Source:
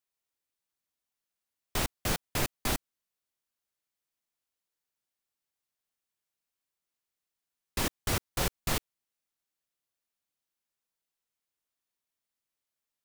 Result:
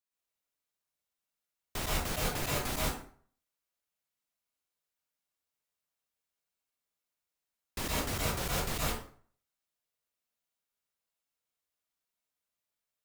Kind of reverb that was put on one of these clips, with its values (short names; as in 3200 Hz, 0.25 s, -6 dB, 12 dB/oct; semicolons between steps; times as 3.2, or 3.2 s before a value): plate-style reverb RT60 0.51 s, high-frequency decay 0.7×, pre-delay 0.105 s, DRR -5.5 dB; gain -6.5 dB